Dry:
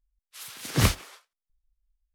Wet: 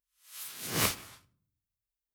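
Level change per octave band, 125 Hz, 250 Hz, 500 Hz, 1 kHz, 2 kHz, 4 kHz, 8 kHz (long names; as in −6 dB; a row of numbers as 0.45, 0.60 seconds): −14.5, −9.0, −5.0, −4.0, −3.5, −3.0, −1.0 decibels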